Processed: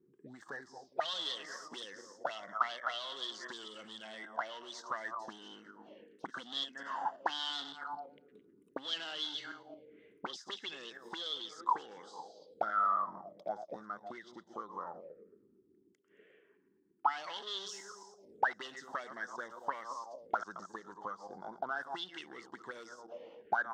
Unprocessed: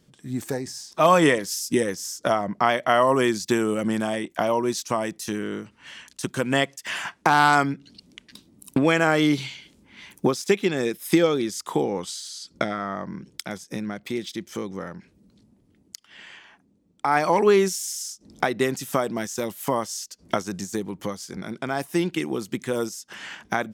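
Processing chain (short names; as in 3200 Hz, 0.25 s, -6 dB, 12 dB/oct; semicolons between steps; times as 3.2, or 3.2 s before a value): regenerating reverse delay 0.112 s, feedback 53%, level -12 dB; 5.26–7.73 bell 250 Hz +9.5 dB 1.1 oct; hard clip -20.5 dBFS, distortion -6 dB; envelope phaser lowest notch 590 Hz, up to 2400 Hz, full sweep at -31 dBFS; auto-wah 370–3400 Hz, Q 10, up, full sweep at -21.5 dBFS; gain +10 dB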